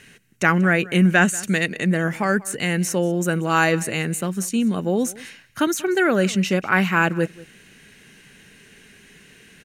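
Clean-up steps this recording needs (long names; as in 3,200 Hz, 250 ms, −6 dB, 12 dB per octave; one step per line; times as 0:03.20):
echo removal 188 ms −21 dB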